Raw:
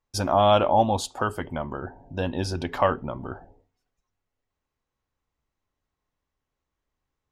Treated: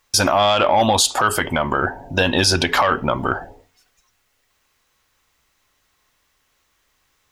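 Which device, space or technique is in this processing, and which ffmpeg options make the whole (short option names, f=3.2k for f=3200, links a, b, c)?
mastering chain: -af "equalizer=f=870:t=o:w=0.77:g=-3,acompressor=threshold=-25dB:ratio=1.5,asoftclip=type=tanh:threshold=-14.5dB,tiltshelf=f=720:g=-8,alimiter=level_in=22dB:limit=-1dB:release=50:level=0:latency=1,volume=-5dB"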